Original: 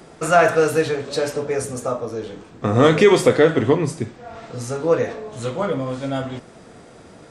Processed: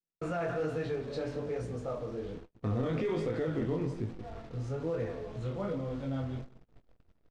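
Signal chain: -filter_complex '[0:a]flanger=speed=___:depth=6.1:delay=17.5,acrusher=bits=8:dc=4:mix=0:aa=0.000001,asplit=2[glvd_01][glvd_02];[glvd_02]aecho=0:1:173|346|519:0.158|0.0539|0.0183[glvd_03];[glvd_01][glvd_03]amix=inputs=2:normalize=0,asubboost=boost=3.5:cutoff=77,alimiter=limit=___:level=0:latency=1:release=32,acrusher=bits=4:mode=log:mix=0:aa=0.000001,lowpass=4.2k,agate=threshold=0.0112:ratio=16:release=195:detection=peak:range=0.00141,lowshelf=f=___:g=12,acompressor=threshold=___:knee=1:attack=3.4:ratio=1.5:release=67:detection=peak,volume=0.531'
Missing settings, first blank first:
1.2, 0.2, 450, 0.00631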